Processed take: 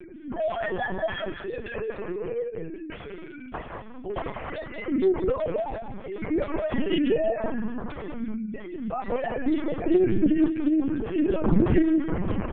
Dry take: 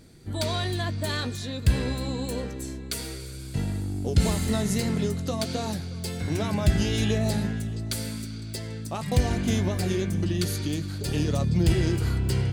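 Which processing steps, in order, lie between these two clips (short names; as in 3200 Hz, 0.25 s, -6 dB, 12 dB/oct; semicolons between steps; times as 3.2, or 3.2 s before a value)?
sine-wave speech; 2.57–4.84 HPF 310 Hz -> 830 Hz 12 dB/oct; upward compressor, threshold -35 dBFS; air absorption 290 m; doubler 32 ms -8 dB; outdoor echo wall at 32 m, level -7 dB; LPC vocoder at 8 kHz pitch kept; Doppler distortion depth 0.26 ms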